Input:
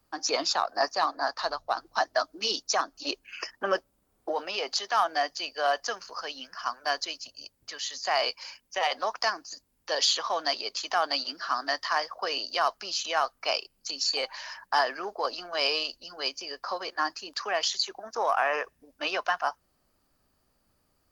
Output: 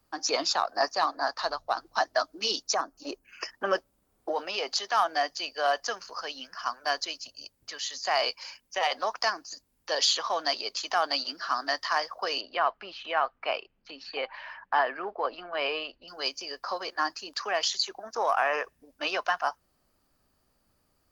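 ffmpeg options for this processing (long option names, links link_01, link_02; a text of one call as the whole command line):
ffmpeg -i in.wav -filter_complex "[0:a]asettb=1/sr,asplit=3[link_01][link_02][link_03];[link_01]atrim=end=2.744[link_04];[link_02]atrim=start=2.74:end=3.41,asetpts=PTS-STARTPTS,afade=type=in:duration=0.004:curve=qsin,afade=type=out:start_time=0.666:duration=0.004:curve=qsin,equalizer=frequency=3500:width_type=o:width=1.6:gain=-13[link_05];[link_03]atrim=start=3.406[link_06];[link_04][link_05]acrossfade=duration=0.004:curve1=hsin:curve2=qsin[link_07];[link_07][link_06]acrossfade=duration=0.004:curve1=qsin:curve2=hsin,asettb=1/sr,asplit=3[link_08][link_09][link_10];[link_08]atrim=end=12.414[link_11];[link_09]atrim=start=12.41:end=16.08,asetpts=PTS-STARTPTS,afade=type=in:duration=0.004:curve=qsin,afade=type=out:start_time=3.666:duration=0.004:curve=qsin,lowpass=frequency=2900:width=0.5412,lowpass=frequency=2900:width=1.3066[link_12];[link_10]atrim=start=16.076[link_13];[link_11][link_12]acrossfade=duration=0.004:curve1=hsin:curve2=qsin[link_14];[link_14][link_13]acrossfade=duration=0.004:curve1=qsin:curve2=hsin" out.wav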